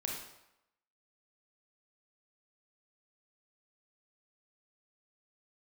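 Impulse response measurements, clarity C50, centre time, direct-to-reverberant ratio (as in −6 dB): 2.0 dB, 49 ms, −1.5 dB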